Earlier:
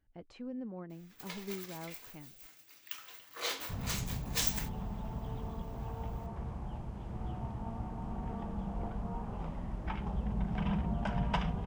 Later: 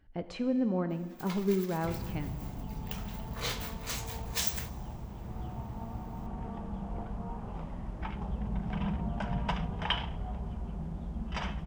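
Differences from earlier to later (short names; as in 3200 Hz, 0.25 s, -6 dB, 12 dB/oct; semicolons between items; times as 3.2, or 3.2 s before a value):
speech +11.0 dB; second sound: entry -1.85 s; reverb: on, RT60 1.6 s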